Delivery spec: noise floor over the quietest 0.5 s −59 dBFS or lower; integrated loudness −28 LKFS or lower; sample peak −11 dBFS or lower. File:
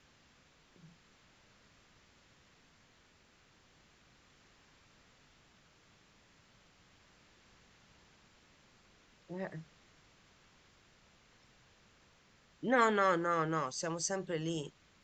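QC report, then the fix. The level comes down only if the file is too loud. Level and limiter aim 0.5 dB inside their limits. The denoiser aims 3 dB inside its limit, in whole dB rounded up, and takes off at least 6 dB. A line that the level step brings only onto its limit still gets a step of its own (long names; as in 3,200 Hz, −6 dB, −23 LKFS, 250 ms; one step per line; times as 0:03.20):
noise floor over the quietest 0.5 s −67 dBFS: in spec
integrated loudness −34.0 LKFS: in spec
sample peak −14.5 dBFS: in spec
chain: no processing needed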